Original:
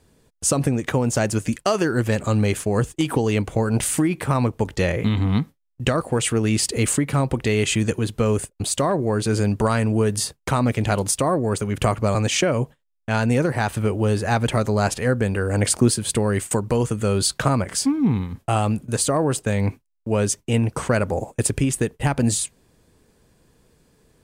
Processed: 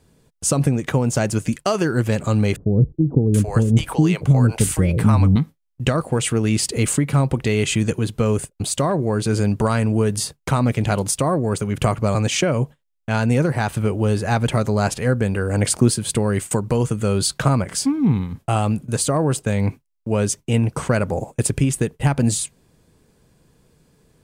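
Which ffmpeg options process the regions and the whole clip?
-filter_complex "[0:a]asettb=1/sr,asplit=3[s0][s1][s2];[s0]atrim=end=2.564[s3];[s1]atrim=start=2.56:end=5.36,asetpts=PTS-STARTPTS,afade=t=in:d=0.004:c=qsin,afade=t=out:st=2.796:d=0.004:c=qsin,lowshelf=f=190:g=7,acrossover=split=530[s4][s5];[s5]adelay=780[s6];[s4][s6]amix=inputs=2:normalize=0,atrim=end_sample=123480[s7];[s2]atrim=start=5.356[s8];[s3][s7]acrossfade=d=0.004:c1=hsin:c2=qsin[s9];[s9][s8]acrossfade=d=0.004:c1=qsin:c2=hsin,equalizer=f=150:w=2:g=5,bandreject=f=1800:w=26"

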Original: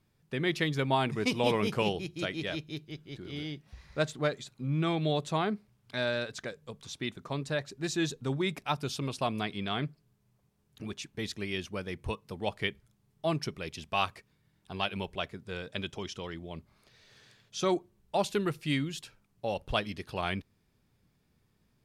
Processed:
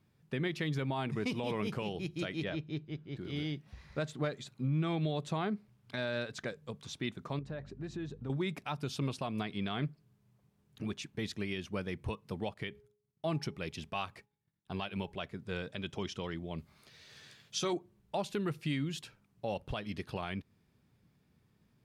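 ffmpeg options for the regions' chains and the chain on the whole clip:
-filter_complex "[0:a]asettb=1/sr,asplit=3[s0][s1][s2];[s0]atrim=end=2.444[s3];[s1]atrim=start=2.44:end=3.17,asetpts=PTS-STARTPTS,afade=t=in:d=0.004:c=qsin,afade=t=out:st=0.726:d=0.004:c=qsin,lowpass=8600,highshelf=f=3500:g=-11[s4];[s2]atrim=start=3.166[s5];[s3][s4]acrossfade=d=0.004:c1=hsin:c2=qsin[s6];[s6][s5]acrossfade=d=0.004:c1=qsin:c2=hsin,asettb=1/sr,asplit=3[s7][s8][s9];[s7]atrim=end=7.394[s10];[s8]atrim=start=7.39:end=8.3,asetpts=PTS-STARTPTS,afade=t=in:d=0.004:c=qsin,afade=t=out:st=0.906:d=0.004:c=qsin,lowpass=f=1200:p=1,acompressor=threshold=0.00891:ratio=3:attack=3.2:release=140:knee=1:detection=peak,aeval=exprs='val(0)+0.00251*(sin(2*PI*50*n/s)+sin(2*PI*2*50*n/s)/2+sin(2*PI*3*50*n/s)/3+sin(2*PI*4*50*n/s)/4+sin(2*PI*5*50*n/s)/5)':c=same[s11];[s9]atrim=start=8.296[s12];[s10][s11]acrossfade=d=0.004:c1=hsin:c2=qsin[s13];[s13][s12]acrossfade=d=0.004:c1=qsin:c2=hsin,asettb=1/sr,asplit=3[s14][s15][s16];[s14]atrim=end=12.544[s17];[s15]atrim=start=12.54:end=15.12,asetpts=PTS-STARTPTS,afade=t=in:d=0.004:c=qsin,afade=t=out:st=2.576:d=0.004:c=qsin,agate=range=0.0224:threshold=0.00112:ratio=3:release=100:detection=peak,bandreject=f=416.5:t=h:w=4,bandreject=f=833:t=h:w=4[s18];[s16]atrim=start=15.116[s19];[s17][s18]acrossfade=d=0.004:c1=hsin:c2=qsin[s20];[s20][s19]acrossfade=d=0.004:c1=qsin:c2=hsin,asettb=1/sr,asplit=3[s21][s22][s23];[s21]atrim=end=16.584[s24];[s22]atrim=start=16.58:end=17.73,asetpts=PTS-STARTPTS,afade=t=in:d=0.004:c=qsin,afade=t=out:st=1.146:d=0.004:c=qsin,highshelf=f=2400:g=8,asplit=2[s25][s26];[s26]adelay=13,volume=0.398[s27];[s25][s27]amix=inputs=2:normalize=0,atrim=end_sample=50715[s28];[s23]atrim=start=17.726[s29];[s24][s28]acrossfade=d=0.004:c1=hsin:c2=qsin[s30];[s30][s29]acrossfade=d=0.004:c1=qsin:c2=hsin,highpass=f=160:p=1,bass=f=250:g=7,treble=f=4000:g=-4,alimiter=level_in=1.12:limit=0.0631:level=0:latency=1:release=194,volume=0.891"

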